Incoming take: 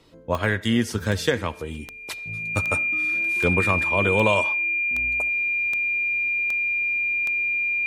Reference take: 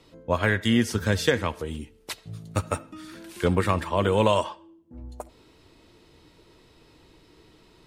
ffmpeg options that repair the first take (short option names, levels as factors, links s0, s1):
-af "adeclick=t=4,bandreject=f=2400:w=30"